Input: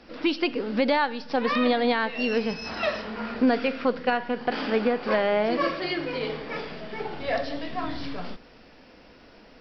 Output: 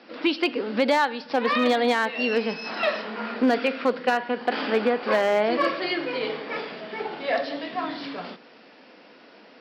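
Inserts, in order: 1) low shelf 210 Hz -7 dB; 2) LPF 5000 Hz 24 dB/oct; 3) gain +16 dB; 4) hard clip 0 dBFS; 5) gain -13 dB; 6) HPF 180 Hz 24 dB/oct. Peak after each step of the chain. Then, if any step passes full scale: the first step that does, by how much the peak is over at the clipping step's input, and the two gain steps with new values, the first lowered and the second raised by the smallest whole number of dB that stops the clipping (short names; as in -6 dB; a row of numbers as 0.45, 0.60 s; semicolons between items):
-11.5, -11.5, +4.5, 0.0, -13.0, -8.0 dBFS; step 3, 4.5 dB; step 3 +11 dB, step 5 -8 dB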